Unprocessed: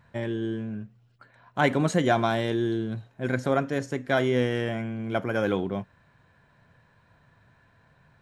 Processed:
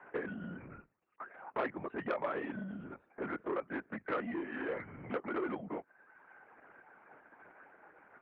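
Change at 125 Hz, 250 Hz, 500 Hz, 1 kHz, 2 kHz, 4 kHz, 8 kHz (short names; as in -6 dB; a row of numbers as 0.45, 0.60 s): -21.0 dB, -13.0 dB, -12.5 dB, -11.5 dB, -11.0 dB, -22.0 dB, under -35 dB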